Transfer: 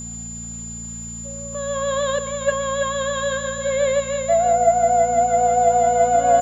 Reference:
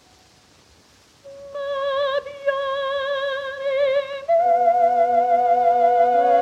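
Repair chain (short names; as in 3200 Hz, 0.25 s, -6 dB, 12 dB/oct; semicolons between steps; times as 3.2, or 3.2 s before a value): de-click; de-hum 57.2 Hz, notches 4; notch 7100 Hz, Q 30; inverse comb 0.333 s -7.5 dB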